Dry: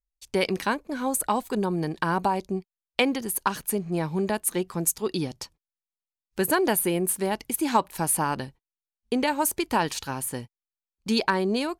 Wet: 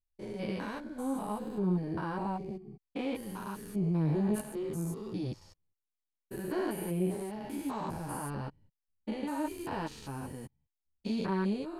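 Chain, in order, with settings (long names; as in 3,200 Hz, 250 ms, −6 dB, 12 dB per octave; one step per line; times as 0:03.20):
spectrum averaged block by block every 200 ms
spectral tilt −2 dB per octave
multi-voice chorus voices 2, 0.57 Hz, delay 12 ms, depth 2.6 ms
0:03.76–0:04.41: envelope flattener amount 50%
level −4.5 dB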